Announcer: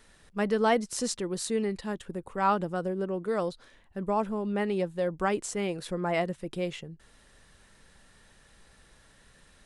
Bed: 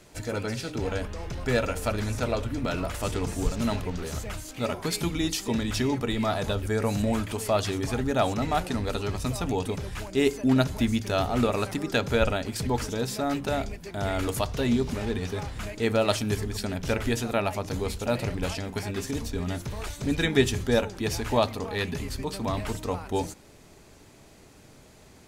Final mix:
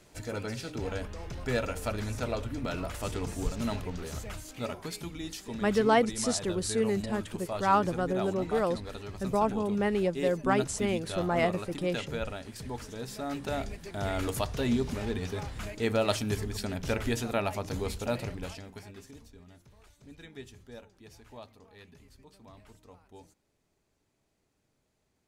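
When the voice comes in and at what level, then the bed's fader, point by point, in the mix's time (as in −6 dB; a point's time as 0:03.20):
5.25 s, +1.0 dB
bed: 0:04.55 −5 dB
0:05.04 −11.5 dB
0:12.87 −11.5 dB
0:13.71 −3.5 dB
0:18.04 −3.5 dB
0:19.48 −24 dB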